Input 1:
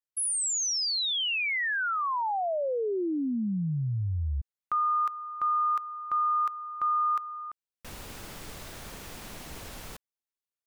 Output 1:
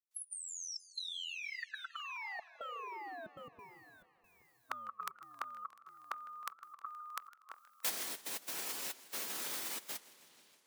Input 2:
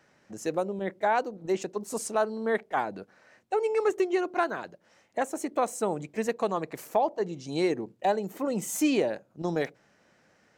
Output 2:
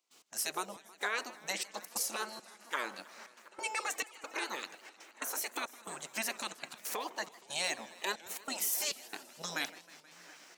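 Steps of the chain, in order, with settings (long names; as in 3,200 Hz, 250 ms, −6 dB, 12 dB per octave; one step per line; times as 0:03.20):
high-pass filter 340 Hz 12 dB per octave
in parallel at −1 dB: downward compressor, threshold −38 dBFS
on the sum: spectral tilt +3.5 dB per octave
brickwall limiter −19 dBFS
on a send: delay with a low-pass on its return 724 ms, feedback 37%, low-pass 2,100 Hz, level −20 dB
on the sum: gate pattern ".x.xxxx..xxxxxx" 138 BPM −24 dB
gate on every frequency bin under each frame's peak −10 dB weak
feedback echo with a swinging delay time 158 ms, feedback 75%, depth 202 cents, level −20 dB
level +1 dB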